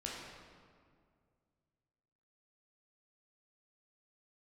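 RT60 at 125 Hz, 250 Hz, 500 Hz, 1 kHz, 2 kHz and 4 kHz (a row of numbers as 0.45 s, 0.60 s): 2.9 s, 2.5 s, 2.2 s, 2.0 s, 1.6 s, 1.2 s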